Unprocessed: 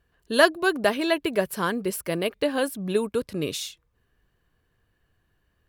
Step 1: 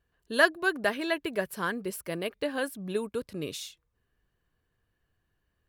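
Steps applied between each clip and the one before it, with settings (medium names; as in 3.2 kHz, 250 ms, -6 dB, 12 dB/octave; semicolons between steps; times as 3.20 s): dynamic bell 1.7 kHz, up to +6 dB, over -37 dBFS, Q 2; trim -7 dB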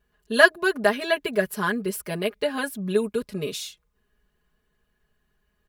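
comb 4.8 ms, depth 97%; trim +3 dB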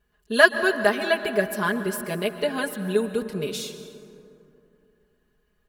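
plate-style reverb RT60 2.9 s, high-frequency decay 0.4×, pre-delay 110 ms, DRR 10 dB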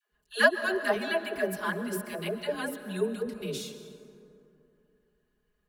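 phase dispersion lows, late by 122 ms, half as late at 440 Hz; trim -6.5 dB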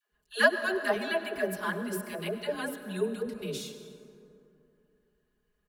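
delay 100 ms -18.5 dB; trim -1 dB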